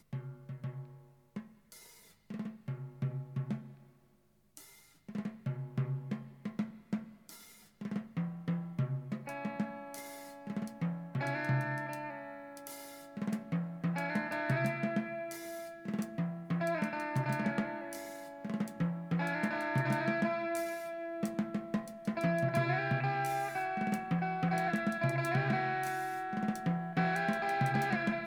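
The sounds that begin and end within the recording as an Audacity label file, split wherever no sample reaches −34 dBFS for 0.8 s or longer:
2.310000	3.560000	sound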